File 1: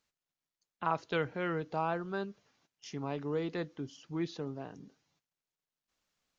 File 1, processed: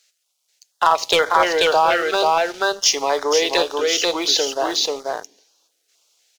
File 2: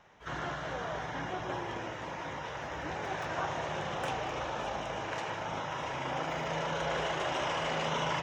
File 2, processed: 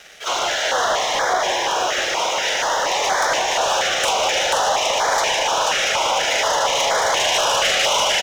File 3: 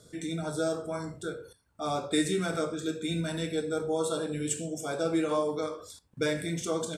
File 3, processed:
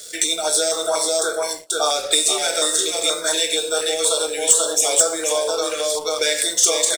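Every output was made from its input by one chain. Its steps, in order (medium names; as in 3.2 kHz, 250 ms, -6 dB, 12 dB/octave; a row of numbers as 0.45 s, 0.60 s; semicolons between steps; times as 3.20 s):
on a send: delay 486 ms -3.5 dB; on the sum: compression, threshold -33 dBFS; high-pass 490 Hz 24 dB/octave; peaking EQ 6.8 kHz +11.5 dB 2.9 oct; two-slope reverb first 0.54 s, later 4.4 s, from -28 dB, DRR 17 dB; waveshaping leveller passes 2; step-sequenced notch 4.2 Hz 980–2700 Hz; normalise loudness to -18 LUFS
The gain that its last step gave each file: +17.0 dB, +12.5 dB, +10.0 dB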